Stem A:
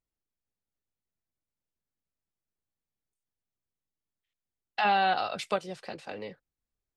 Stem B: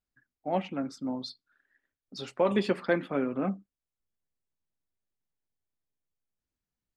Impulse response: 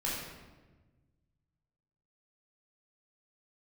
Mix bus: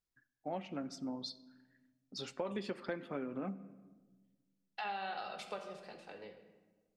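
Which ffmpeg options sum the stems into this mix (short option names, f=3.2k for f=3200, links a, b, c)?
-filter_complex "[0:a]highpass=f=210:p=1,volume=-14dB,asplit=2[a][b];[b]volume=-7dB[c];[1:a]equalizer=f=5.8k:t=o:w=0.91:g=4.5,volume=-5dB,asplit=2[d][e];[e]volume=-22dB[f];[2:a]atrim=start_sample=2205[g];[c][f]amix=inputs=2:normalize=0[h];[h][g]afir=irnorm=-1:irlink=0[i];[a][d][i]amix=inputs=3:normalize=0,acompressor=threshold=-37dB:ratio=4"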